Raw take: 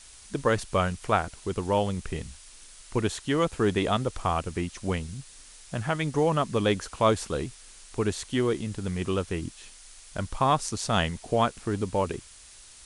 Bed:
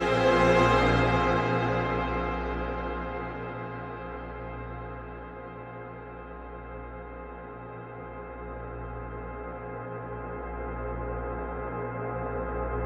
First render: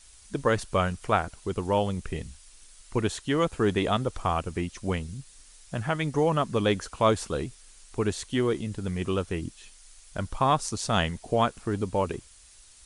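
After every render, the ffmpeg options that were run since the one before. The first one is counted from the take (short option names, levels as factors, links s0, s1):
-af "afftdn=nr=6:nf=-50"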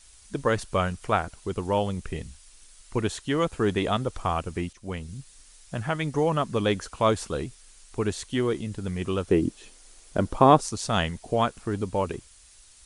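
-filter_complex "[0:a]asettb=1/sr,asplit=3[s0][s1][s2];[s0]atrim=end=9.284[s3];[s1]atrim=start=9.28:end=10.61,asetpts=PTS-STARTPTS,afade=t=in:d=0.004:c=qsin,afade=t=out:st=1.326:d=0.004:c=qsin,equalizer=f=360:t=o:w=2.2:g=13[s4];[s2]atrim=start=10.606[s5];[s3][s4]acrossfade=d=0.004:c1=hsin:c2=qsin[s6];[s6][s5]acrossfade=d=0.004:c1=qsin:c2=hsin,asplit=2[s7][s8];[s7]atrim=end=4.73,asetpts=PTS-STARTPTS,afade=t=out:st=4.726:d=0.004:c=hsin:silence=0.223872[s9];[s8]atrim=start=4.73,asetpts=PTS-STARTPTS,afade=t=in:d=0.44:silence=0.223872[s10];[s9][s10]concat=n=2:v=0:a=1"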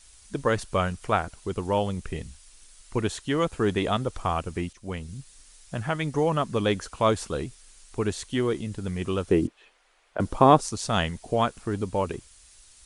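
-filter_complex "[0:a]asettb=1/sr,asplit=3[s0][s1][s2];[s0]atrim=end=9.474[s3];[s1]atrim=start=9.47:end=10.2,asetpts=PTS-STARTPTS,afade=t=in:d=0.004:c=qsin,afade=t=out:st=0.726:d=0.004:c=qsin,acrossover=split=510 3000:gain=0.1 1 0.0794[s4][s5][s6];[s4][s5][s6]amix=inputs=3:normalize=0[s7];[s2]atrim=start=10.196[s8];[s3][s7]acrossfade=d=0.004:c1=hsin:c2=qsin[s9];[s9][s8]acrossfade=d=0.004:c1=qsin:c2=hsin"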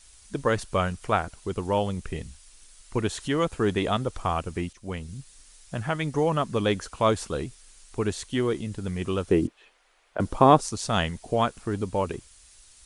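-filter_complex "[0:a]asettb=1/sr,asplit=3[s0][s1][s2];[s0]atrim=end=2.964[s3];[s1]atrim=start=2.96:end=3.54,asetpts=PTS-STARTPTS,afade=t=in:d=0.004:c=qsin,afade=t=out:st=0.576:d=0.004:c=qsin,acompressor=mode=upward:threshold=0.0355:ratio=2.5:attack=3.2:release=140:knee=2.83:detection=peak[s4];[s2]atrim=start=3.536[s5];[s3][s4]acrossfade=d=0.004:c1=hsin:c2=qsin[s6];[s6][s5]acrossfade=d=0.004:c1=qsin:c2=hsin"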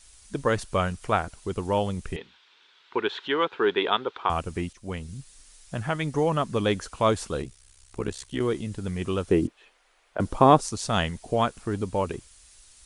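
-filter_complex "[0:a]asettb=1/sr,asplit=3[s0][s1][s2];[s0]atrim=end=2.164[s3];[s1]atrim=start=2.16:end=4.3,asetpts=PTS-STARTPTS,afade=t=in:d=0.004:c=qsin,afade=t=out:st=2.136:d=0.004:c=qsin,highpass=380,equalizer=f=400:t=q:w=4:g=7,equalizer=f=620:t=q:w=4:g=-6,equalizer=f=940:t=q:w=4:g=7,equalizer=f=1500:t=q:w=4:g=7,equalizer=f=2400:t=q:w=4:g=3,equalizer=f=3500:t=q:w=4:g=8,lowpass=f=3800:w=0.5412,lowpass=f=3800:w=1.3066[s4];[s2]atrim=start=4.296[s5];[s3][s4]acrossfade=d=0.004:c1=hsin:c2=qsin[s6];[s6][s5]acrossfade=d=0.004:c1=qsin:c2=hsin,asettb=1/sr,asplit=3[s7][s8][s9];[s7]atrim=end=7.424[s10];[s8]atrim=start=7.42:end=8.41,asetpts=PTS-STARTPTS,afade=t=in:d=0.004:c=qsin,afade=t=out:st=0.986:d=0.004:c=qsin,tremolo=f=65:d=0.889[s11];[s9]atrim=start=8.406[s12];[s10][s11]acrossfade=d=0.004:c1=hsin:c2=qsin[s13];[s13][s12]acrossfade=d=0.004:c1=qsin:c2=hsin"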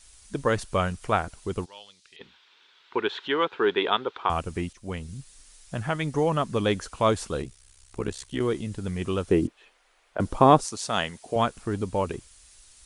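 -filter_complex "[0:a]asplit=3[s0][s1][s2];[s0]afade=t=out:st=1.64:d=0.02[s3];[s1]bandpass=f=4300:t=q:w=2.5,afade=t=in:st=1.64:d=0.02,afade=t=out:st=2.19:d=0.02[s4];[s2]afade=t=in:st=2.19:d=0.02[s5];[s3][s4][s5]amix=inputs=3:normalize=0,asettb=1/sr,asplit=3[s6][s7][s8];[s6]atrim=end=10.644[s9];[s7]atrim=start=10.64:end=11.36,asetpts=PTS-STARTPTS,afade=t=in:d=0.004:c=qsin,afade=t=out:st=0.716:d=0.004:c=qsin,highpass=f=350:p=1[s10];[s8]atrim=start=11.356[s11];[s9][s10]acrossfade=d=0.004:c1=hsin:c2=qsin[s12];[s12][s11]acrossfade=d=0.004:c1=qsin:c2=hsin"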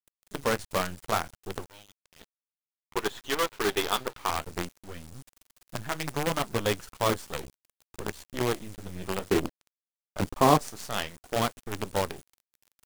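-af "flanger=delay=7.7:depth=8.1:regen=-41:speed=0.6:shape=sinusoidal,acrusher=bits=5:dc=4:mix=0:aa=0.000001"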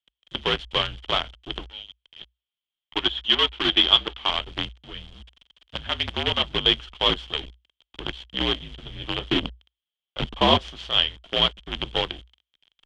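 -af "afreqshift=-60,lowpass=f=3200:t=q:w=12"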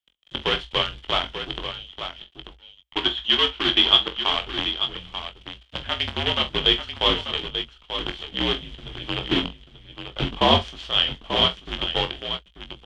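-filter_complex "[0:a]asplit=2[s0][s1];[s1]adelay=22,volume=0.398[s2];[s0][s2]amix=inputs=2:normalize=0,aecho=1:1:45|888:0.237|0.355"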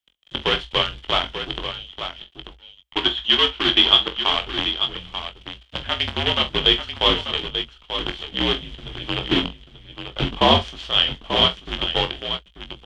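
-af "volume=1.33,alimiter=limit=0.891:level=0:latency=1"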